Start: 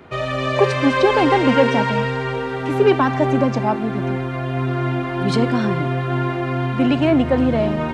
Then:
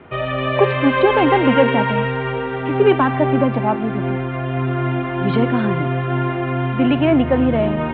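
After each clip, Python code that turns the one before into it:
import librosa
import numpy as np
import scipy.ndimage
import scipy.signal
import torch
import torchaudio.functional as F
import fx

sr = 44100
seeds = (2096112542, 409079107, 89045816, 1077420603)

y = scipy.signal.sosfilt(scipy.signal.butter(8, 3400.0, 'lowpass', fs=sr, output='sos'), x)
y = y * 10.0 ** (1.0 / 20.0)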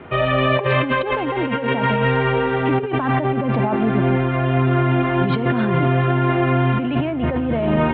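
y = fx.over_compress(x, sr, threshold_db=-20.0, ratio=-1.0)
y = y * 10.0 ** (1.5 / 20.0)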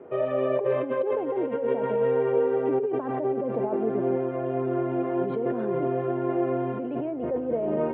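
y = fx.bandpass_q(x, sr, hz=460.0, q=2.7)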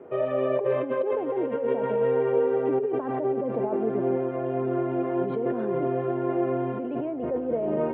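y = x + 10.0 ** (-21.0 / 20.0) * np.pad(x, (int(791 * sr / 1000.0), 0))[:len(x)]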